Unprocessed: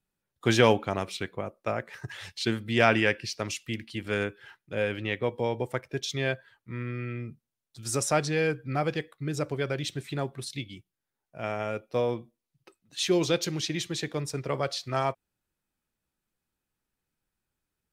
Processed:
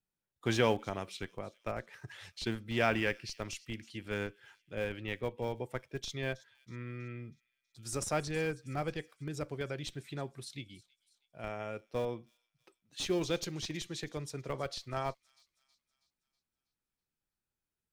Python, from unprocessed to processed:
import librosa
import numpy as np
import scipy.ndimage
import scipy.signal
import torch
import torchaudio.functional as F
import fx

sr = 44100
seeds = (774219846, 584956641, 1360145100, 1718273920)

p1 = fx.schmitt(x, sr, flips_db=-22.5)
p2 = x + F.gain(torch.from_numpy(p1), -8.0).numpy()
p3 = fx.echo_wet_highpass(p2, sr, ms=322, feedback_pct=49, hz=4100.0, wet_db=-17)
y = F.gain(torch.from_numpy(p3), -8.5).numpy()